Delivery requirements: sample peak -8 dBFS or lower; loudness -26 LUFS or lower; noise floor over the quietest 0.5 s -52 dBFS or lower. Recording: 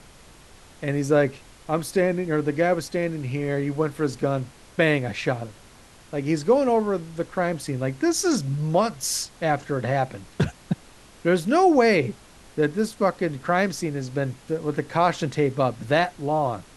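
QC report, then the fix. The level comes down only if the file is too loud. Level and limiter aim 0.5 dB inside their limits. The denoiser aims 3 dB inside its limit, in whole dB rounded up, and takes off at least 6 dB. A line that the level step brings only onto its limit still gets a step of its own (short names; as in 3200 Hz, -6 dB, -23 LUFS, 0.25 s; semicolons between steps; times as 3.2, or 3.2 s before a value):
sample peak -6.0 dBFS: fail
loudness -24.0 LUFS: fail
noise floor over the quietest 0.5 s -49 dBFS: fail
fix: denoiser 6 dB, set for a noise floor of -49 dBFS; gain -2.5 dB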